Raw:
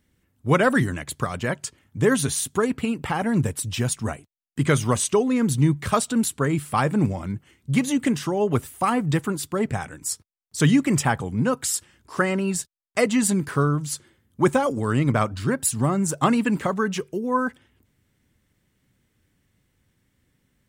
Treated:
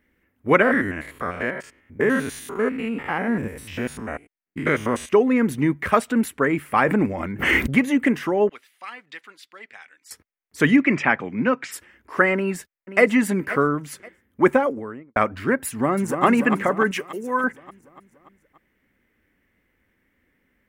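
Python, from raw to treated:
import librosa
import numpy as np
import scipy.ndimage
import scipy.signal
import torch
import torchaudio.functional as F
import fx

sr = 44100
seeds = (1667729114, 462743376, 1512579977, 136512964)

y = fx.spec_steps(x, sr, hold_ms=100, at=(0.62, 5.09))
y = fx.pre_swell(y, sr, db_per_s=25.0, at=(6.76, 7.83))
y = fx.bandpass_q(y, sr, hz=4100.0, q=2.4, at=(8.49, 10.11))
y = fx.cabinet(y, sr, low_hz=120.0, low_slope=24, high_hz=5900.0, hz=(460.0, 830.0, 2400.0), db=(-4, -3, 7), at=(10.76, 11.71), fade=0.02)
y = fx.echo_throw(y, sr, start_s=12.34, length_s=0.68, ms=530, feedback_pct=25, wet_db=-13.0)
y = fx.studio_fade_out(y, sr, start_s=14.41, length_s=0.75)
y = fx.echo_throw(y, sr, start_s=15.68, length_s=0.57, ms=290, feedback_pct=60, wet_db=-6.5)
y = fx.tilt_shelf(y, sr, db=-7.5, hz=1500.0, at=(16.91, 17.44))
y = fx.graphic_eq(y, sr, hz=(125, 250, 500, 2000, 4000, 8000), db=(-12, 4, 4, 11, -8, -11))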